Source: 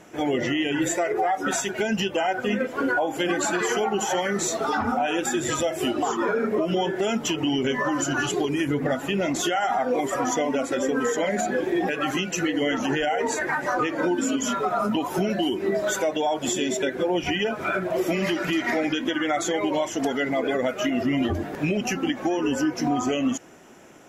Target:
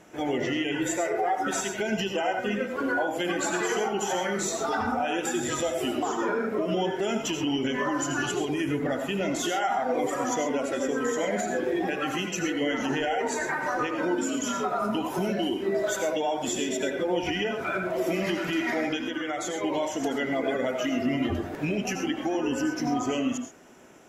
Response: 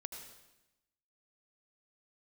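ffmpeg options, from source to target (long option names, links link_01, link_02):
-filter_complex "[0:a]asettb=1/sr,asplit=3[link_01][link_02][link_03];[link_01]atrim=end=18.964[link_04];[link_02]atrim=start=18.96:end=19.62,asetpts=PTS-STARTPTS,afade=type=in:duration=0.004:curve=qsin,afade=type=out:start_time=0.656:duration=0.004:curve=qsin,acompressor=threshold=-24dB:ratio=6[link_05];[link_03]atrim=start=19.616[link_06];[link_04][link_05]acrossfade=duration=0.004:curve1=hsin:curve2=qsin[link_07];[link_07][link_06]acrossfade=duration=0.004:curve1=qsin:curve2=hsin[link_08];[1:a]atrim=start_sample=2205,atrim=end_sample=6174[link_09];[link_08][link_09]afir=irnorm=-1:irlink=0"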